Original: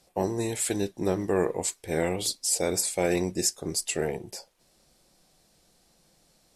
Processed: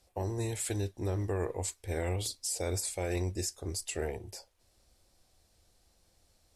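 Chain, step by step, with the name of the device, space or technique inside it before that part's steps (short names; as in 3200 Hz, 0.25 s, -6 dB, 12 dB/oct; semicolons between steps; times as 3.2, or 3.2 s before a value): car stereo with a boomy subwoofer (resonant low shelf 120 Hz +8 dB, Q 3; limiter -18 dBFS, peak gain reduction 6 dB); gain -6 dB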